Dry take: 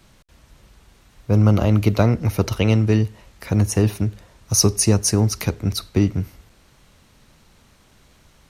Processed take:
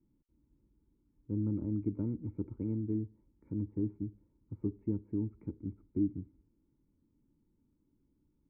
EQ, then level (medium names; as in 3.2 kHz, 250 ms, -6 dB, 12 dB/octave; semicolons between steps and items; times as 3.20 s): cascade formant filter u; peaking EQ 1.4 kHz +6 dB 0.35 oct; static phaser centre 1.8 kHz, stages 4; -6.5 dB